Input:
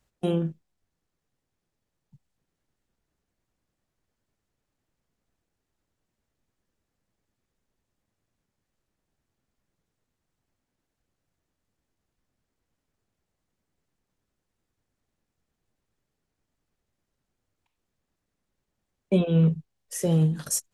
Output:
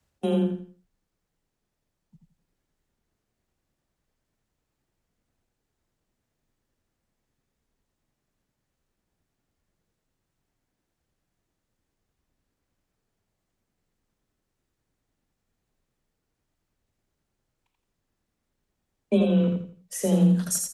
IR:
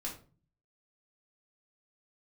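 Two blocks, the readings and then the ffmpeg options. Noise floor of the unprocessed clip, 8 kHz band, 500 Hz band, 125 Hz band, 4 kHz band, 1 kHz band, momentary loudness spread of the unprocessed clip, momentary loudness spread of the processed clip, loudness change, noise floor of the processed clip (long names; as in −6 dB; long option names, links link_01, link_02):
−83 dBFS, +1.5 dB, +2.0 dB, −2.0 dB, +1.0 dB, +2.5 dB, 12 LU, 12 LU, +1.0 dB, −81 dBFS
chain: -af "afreqshift=21,aecho=1:1:84|168|252|336:0.596|0.179|0.0536|0.0161"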